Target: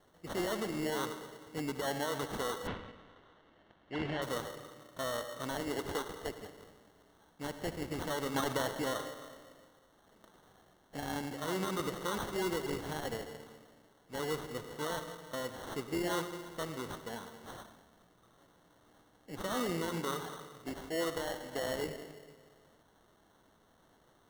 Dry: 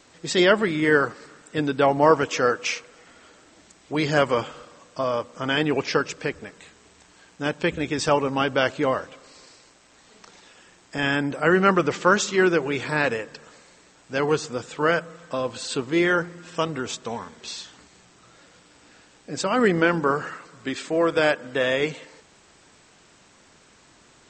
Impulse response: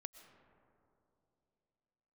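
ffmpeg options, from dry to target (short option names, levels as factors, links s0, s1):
-filter_complex "[0:a]asettb=1/sr,asplit=3[s0][s1][s2];[s0]atrim=end=5.604[s3];[s1]atrim=start=5.6:end=6.39,asetpts=PTS-STARTPTS,afade=t=in:d=0.004:c=qsin,afade=t=out:st=0.786:d=0.004:c=qsin,highpass=250[s4];[s2]atrim=start=6.386[s5];[s3][s4]acrossfade=d=0.004:c1=hsin:c2=qsin[s6];[s6][s5]acrossfade=d=0.004:c1=qsin:c2=hsin,alimiter=limit=0.211:level=0:latency=1:release=51,asettb=1/sr,asplit=3[s7][s8][s9];[s7]atrim=end=8.344[s10];[s8]atrim=start=8.34:end=8.74,asetpts=PTS-STARTPTS,afade=t=in:d=0.004:c=qsin,afade=t=out:st=0.396:d=0.004:c=qsin,acontrast=34[s11];[s9]atrim=start=8.736[s12];[s10][s11]acrossfade=d=0.004:c1=hsin:c2=qsin[s13];[s13][s12]acrossfade=d=0.004:c1=qsin:c2=hsin[s14];[1:a]atrim=start_sample=2205,asetrate=83790,aresample=44100[s15];[s14][s15]afir=irnorm=-1:irlink=0,acrusher=samples=18:mix=1:aa=0.000001,asettb=1/sr,asplit=3[s16][s17][s18];[s16]atrim=end=2.674[s19];[s17]atrim=start=2.67:end=4.22,asetpts=PTS-STARTPTS,afade=t=in:d=0.004:c=qsin,afade=t=out:st=1.546:d=0.004:c=qsin,lowpass=f=2800:t=q:w=1.7[s20];[s18]atrim=start=4.216[s21];[s19][s20]acrossfade=d=0.004:c1=hsin:c2=qsin[s22];[s22][s21]acrossfade=d=0.004:c1=qsin:c2=hsin,volume=0.891"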